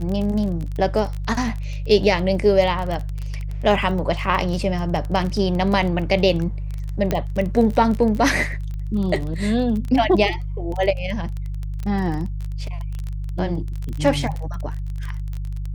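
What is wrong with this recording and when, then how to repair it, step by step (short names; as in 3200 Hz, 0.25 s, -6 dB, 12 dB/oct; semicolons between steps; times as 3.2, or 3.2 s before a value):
crackle 23/s -25 dBFS
hum 50 Hz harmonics 3 -27 dBFS
7.11 pop -8 dBFS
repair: de-click; de-hum 50 Hz, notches 3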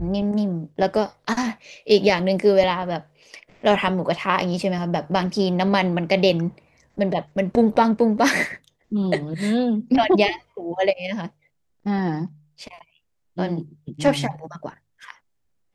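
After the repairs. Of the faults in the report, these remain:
none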